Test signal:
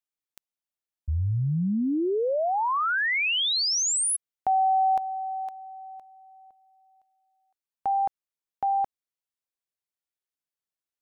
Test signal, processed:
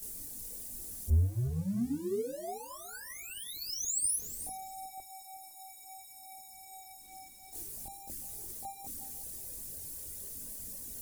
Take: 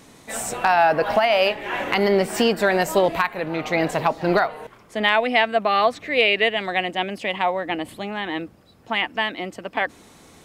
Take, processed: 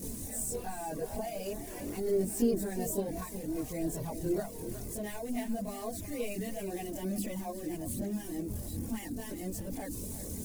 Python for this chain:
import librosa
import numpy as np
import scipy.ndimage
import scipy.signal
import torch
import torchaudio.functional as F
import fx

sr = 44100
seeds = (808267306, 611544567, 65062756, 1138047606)

y = x + 0.5 * 10.0 ** (-20.0 / 20.0) * np.sign(x)
y = fx.notch(y, sr, hz=1300.0, q=6.2)
y = fx.dereverb_blind(y, sr, rt60_s=0.67)
y = fx.high_shelf(y, sr, hz=7700.0, db=-6.5)
y = fx.hum_notches(y, sr, base_hz=50, count=5)
y = fx.chorus_voices(y, sr, voices=6, hz=0.29, base_ms=23, depth_ms=2.5, mix_pct=65)
y = fx.curve_eq(y, sr, hz=(210.0, 590.0, 890.0, 3100.0, 9900.0), db=(0, -12, -21, -23, 3))
y = fx.echo_feedback(y, sr, ms=364, feedback_pct=16, wet_db=-13.0)
y = y * librosa.db_to_amplitude(-4.5)